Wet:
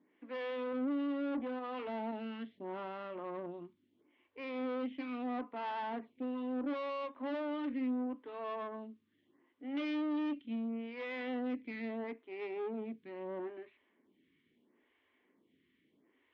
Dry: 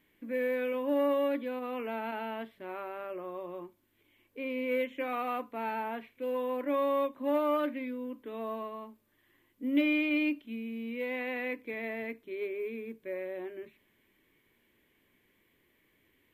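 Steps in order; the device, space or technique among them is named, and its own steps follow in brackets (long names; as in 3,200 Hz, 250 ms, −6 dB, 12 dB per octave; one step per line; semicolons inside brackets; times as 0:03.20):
vibe pedal into a guitar amplifier (phaser with staggered stages 0.75 Hz; tube saturation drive 40 dB, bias 0.7; loudspeaker in its box 110–3,400 Hz, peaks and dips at 120 Hz −8 dB, 260 Hz +6 dB, 550 Hz −3 dB, 1,600 Hz −4 dB, 2,400 Hz −5 dB)
level +5 dB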